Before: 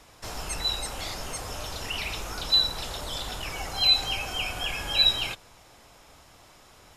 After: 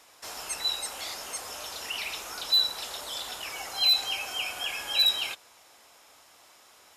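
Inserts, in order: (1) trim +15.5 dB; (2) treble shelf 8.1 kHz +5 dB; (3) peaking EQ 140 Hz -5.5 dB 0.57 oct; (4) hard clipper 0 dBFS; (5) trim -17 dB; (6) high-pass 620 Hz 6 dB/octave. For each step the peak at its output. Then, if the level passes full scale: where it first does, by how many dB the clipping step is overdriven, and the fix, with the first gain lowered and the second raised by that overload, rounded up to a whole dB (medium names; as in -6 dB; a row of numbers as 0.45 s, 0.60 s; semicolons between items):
+6.0 dBFS, +6.5 dBFS, +6.5 dBFS, 0.0 dBFS, -17.0 dBFS, -15.5 dBFS; step 1, 6.5 dB; step 1 +8.5 dB, step 5 -10 dB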